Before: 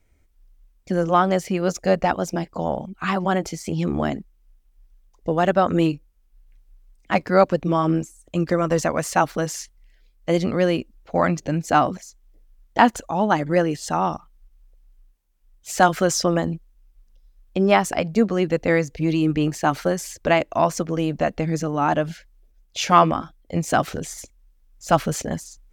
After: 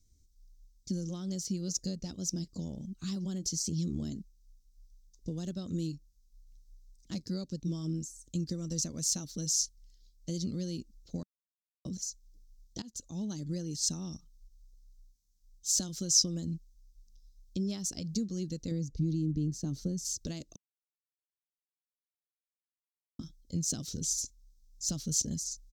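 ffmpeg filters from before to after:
-filter_complex "[0:a]asettb=1/sr,asplit=3[a][b][c];[a]atrim=end=18.714[d];[b]atrim=start=18.71:end=20.05,asetpts=PTS-STARTPTS,afade=t=in:d=0.004:c=qsin,afade=t=out:st=1.336:d=0.004:c=qsin,tiltshelf=f=840:g=7.5[e];[c]atrim=start=20.046[f];[d][e]acrossfade=d=0.004:c1=hsin:c2=qsin[g];[g][f]acrossfade=d=0.004:c1=qsin:c2=hsin,asplit=6[h][i][j][k][l][m];[h]atrim=end=11.23,asetpts=PTS-STARTPTS,afade=t=out:st=11.226:d=0.004:c=hsin[n];[i]atrim=start=11.23:end=11.85,asetpts=PTS-STARTPTS,volume=0[o];[j]atrim=start=11.85:end=12.82,asetpts=PTS-STARTPTS,afade=t=in:d=0.004:c=hsin,afade=t=out:st=0.966:d=0.004:c=hsin:silence=0.0944061[p];[k]atrim=start=12.82:end=20.56,asetpts=PTS-STARTPTS,afade=t=in:d=0.64:c=qsin:silence=0.0944061,afade=t=out:st=7.736:d=0.004:c=hsin[q];[l]atrim=start=20.56:end=23.19,asetpts=PTS-STARTPTS,volume=0[r];[m]atrim=start=23.19,asetpts=PTS-STARTPTS,afade=t=in:d=0.004:c=hsin[s];[n][o][p][q][r][s]concat=n=6:v=0:a=1,acompressor=threshold=-25dB:ratio=2.5,firequalizer=gain_entry='entry(190,0);entry(740,-27);entry(2400,-20);entry(3800,3);entry(5800,12);entry(9500,0)':delay=0.05:min_phase=1,volume=-4.5dB"

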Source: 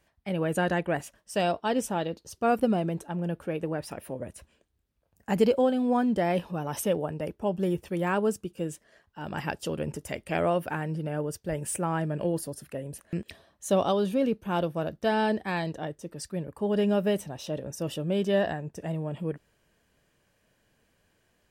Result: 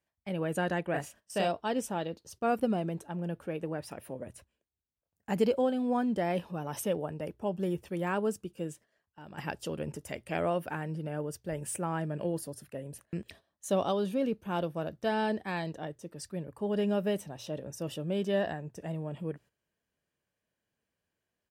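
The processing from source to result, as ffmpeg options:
-filter_complex "[0:a]asplit=3[a][b][c];[a]afade=t=out:st=0.93:d=0.02[d];[b]asplit=2[e][f];[f]adelay=36,volume=-3dB[g];[e][g]amix=inputs=2:normalize=0,afade=t=in:st=0.93:d=0.02,afade=t=out:st=1.47:d=0.02[h];[c]afade=t=in:st=1.47:d=0.02[i];[d][h][i]amix=inputs=3:normalize=0,asplit=3[j][k][l];[j]afade=t=out:st=8.72:d=0.02[m];[k]acompressor=threshold=-43dB:ratio=2.5:attack=3.2:release=140:knee=1:detection=peak,afade=t=in:st=8.72:d=0.02,afade=t=out:st=9.37:d=0.02[n];[l]afade=t=in:st=9.37:d=0.02[o];[m][n][o]amix=inputs=3:normalize=0,highpass=51,bandreject=f=60:t=h:w=6,bandreject=f=120:t=h:w=6,agate=range=-12dB:threshold=-49dB:ratio=16:detection=peak,volume=-4.5dB"

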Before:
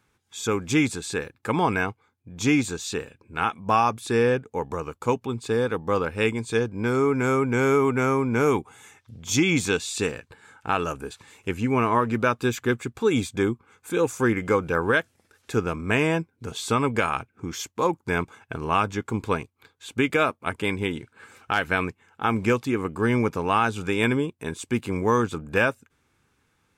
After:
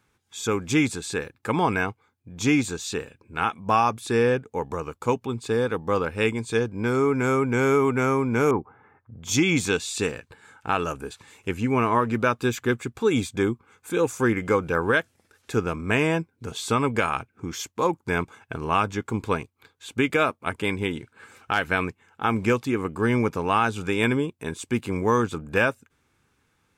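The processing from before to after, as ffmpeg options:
-filter_complex "[0:a]asettb=1/sr,asplit=3[a][b][c];[a]atrim=end=8.514[d];[b]atrim=start=8.51:end=9.23,asetpts=PTS-STARTPTS,afade=t=in:d=0.004:c=qsin,afade=t=out:st=0.716:d=0.004:c=qsin,lowpass=f=1.5k:w=0.5412,lowpass=f=1.5k:w=1.3066[e];[c]atrim=start=9.226[f];[d][e]acrossfade=d=0.004:c1=hsin:c2=qsin[g];[g][f]acrossfade=d=0.004:c1=qsin:c2=hsin"

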